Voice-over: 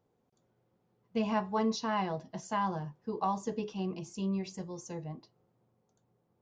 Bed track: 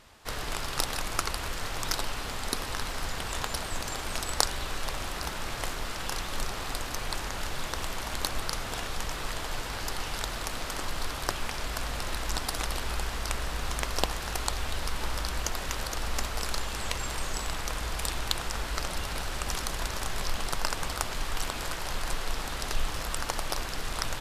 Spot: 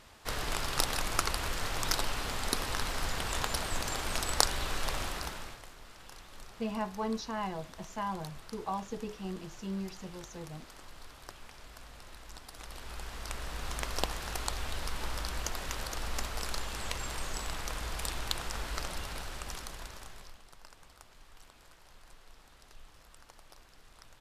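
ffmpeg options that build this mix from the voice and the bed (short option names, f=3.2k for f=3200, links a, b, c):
-filter_complex "[0:a]adelay=5450,volume=-4dB[a];[1:a]volume=12.5dB,afade=t=out:st=4.99:d=0.63:silence=0.141254,afade=t=in:st=12.51:d=1.38:silence=0.223872,afade=t=out:st=18.76:d=1.64:silence=0.1[b];[a][b]amix=inputs=2:normalize=0"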